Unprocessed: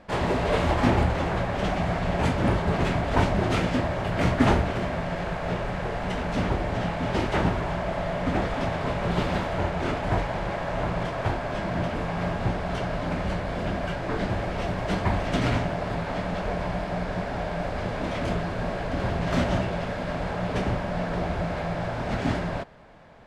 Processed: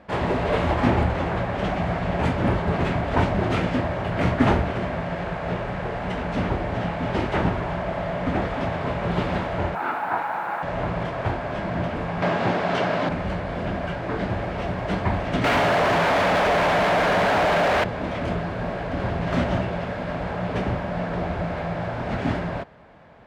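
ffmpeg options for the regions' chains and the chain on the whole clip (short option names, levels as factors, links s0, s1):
-filter_complex "[0:a]asettb=1/sr,asplit=3[s0][s1][s2];[s0]atrim=end=9.754[s3];[s1]atrim=start=9.75:end=10.63,asetpts=PTS-STARTPTS,afade=t=in:d=0.004:c=qsin,afade=t=out:st=0.876:d=0.004:c=qsin,highpass=380,equalizer=f=410:t=q:w=4:g=-7,equalizer=f=590:t=q:w=4:g=-8,equalizer=f=860:t=q:w=4:g=9,equalizer=f=1400:t=q:w=4:g=9,equalizer=f=2000:t=q:w=4:g=-3,equalizer=f=3200:t=q:w=4:g=-8,lowpass=f=3900:w=0.5412,lowpass=f=3900:w=1.3066,acrusher=bits=7:mix=0:aa=0.5[s4];[s2]atrim=start=10.626[s5];[s3][s4]acrossfade=d=0.004:c1=hsin:c2=qsin[s6];[s6][s5]acrossfade=d=0.004:c1=qsin:c2=hsin,asettb=1/sr,asplit=3[s7][s8][s9];[s7]atrim=end=12.224[s10];[s8]atrim=start=12.22:end=13.09,asetpts=PTS-STARTPTS,afade=t=in:d=0.004:c=qsin,afade=t=out:st=0.866:d=0.004:c=qsin,aemphasis=mode=production:type=cd,acontrast=68,highpass=200,lowpass=5800[s11];[s9]atrim=start=13.086[s12];[s10][s11]acrossfade=d=0.004:c1=hsin:c2=qsin[s13];[s13][s12]acrossfade=d=0.004:c1=qsin:c2=hsin,asettb=1/sr,asplit=3[s14][s15][s16];[s14]atrim=end=15.444[s17];[s15]atrim=start=15.44:end=17.84,asetpts=PTS-STARTPTS,afade=t=in:d=0.004:c=qsin,afade=t=out:st=2.396:d=0.004:c=qsin,bandreject=f=60:t=h:w=6,bandreject=f=120:t=h:w=6,bandreject=f=180:t=h:w=6,bandreject=f=240:t=h:w=6,bandreject=f=300:t=h:w=6,bandreject=f=360:t=h:w=6,asplit=2[s18][s19];[s19]highpass=f=720:p=1,volume=89.1,asoftclip=type=tanh:threshold=0.188[s20];[s18][s20]amix=inputs=2:normalize=0,lowpass=f=3000:p=1,volume=0.501[s21];[s16]atrim=start=17.836[s22];[s17][s21]acrossfade=d=0.004:c1=hsin:c2=qsin[s23];[s23][s22]acrossfade=d=0.004:c1=qsin:c2=hsin,highpass=48,bass=f=250:g=0,treble=f=4000:g=-8,volume=1.19"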